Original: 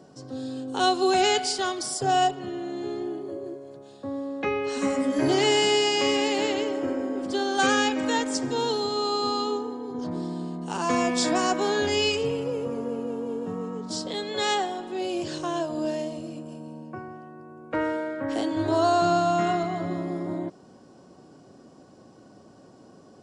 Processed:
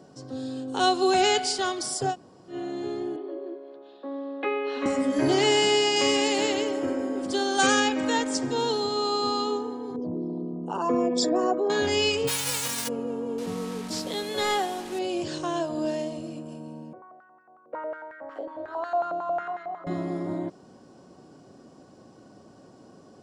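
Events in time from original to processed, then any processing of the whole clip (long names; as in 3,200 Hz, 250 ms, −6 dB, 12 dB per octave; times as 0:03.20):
0:02.11–0:02.52: fill with room tone, crossfade 0.10 s
0:03.16–0:04.86: Chebyshev band-pass filter 300–3,700 Hz, order 3
0:05.96–0:07.80: high-shelf EQ 7,100 Hz +10.5 dB
0:09.96–0:11.70: spectral envelope exaggerated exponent 2
0:12.27–0:12.87: spectral envelope flattened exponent 0.1
0:13.38–0:14.99: linear delta modulator 64 kbit/s, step −35 dBFS
0:16.93–0:19.87: band-pass on a step sequencer 11 Hz 540–1,700 Hz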